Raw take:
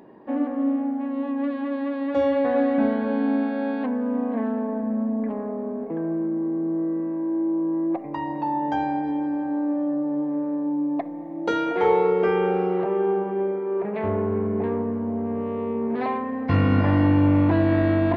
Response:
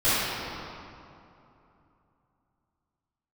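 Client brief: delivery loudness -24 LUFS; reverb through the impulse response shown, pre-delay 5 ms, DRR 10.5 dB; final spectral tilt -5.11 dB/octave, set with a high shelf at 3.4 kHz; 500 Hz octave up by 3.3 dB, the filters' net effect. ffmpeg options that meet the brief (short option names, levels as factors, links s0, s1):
-filter_complex "[0:a]equalizer=f=500:t=o:g=4,highshelf=f=3400:g=4.5,asplit=2[s0][s1];[1:a]atrim=start_sample=2205,adelay=5[s2];[s1][s2]afir=irnorm=-1:irlink=0,volume=0.0376[s3];[s0][s3]amix=inputs=2:normalize=0,volume=0.75"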